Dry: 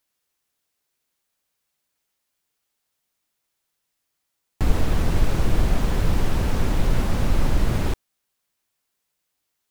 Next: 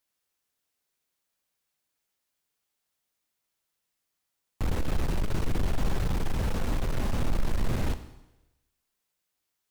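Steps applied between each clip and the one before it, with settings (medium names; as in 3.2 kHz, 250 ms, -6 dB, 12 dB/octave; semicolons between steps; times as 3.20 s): overload inside the chain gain 18.5 dB; Schroeder reverb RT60 0.98 s, combs from 29 ms, DRR 10.5 dB; trim -4.5 dB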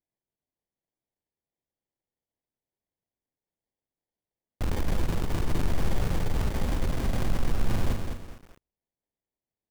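gate -49 dBFS, range -15 dB; sample-and-hold 33×; bit-crushed delay 207 ms, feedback 35%, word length 8-bit, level -5.5 dB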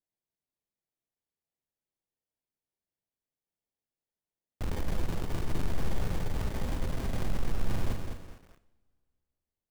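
two-slope reverb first 0.69 s, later 2.5 s, from -20 dB, DRR 12.5 dB; trim -5 dB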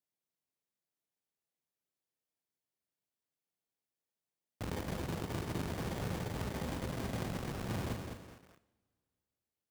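high-pass 100 Hz 12 dB/octave; trim -1 dB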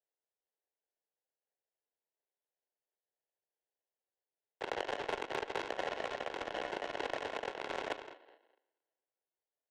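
sample-and-hold 38×; mistuned SSB +68 Hz 340–3600 Hz; Chebyshev shaper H 7 -19 dB, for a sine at -28 dBFS; trim +8.5 dB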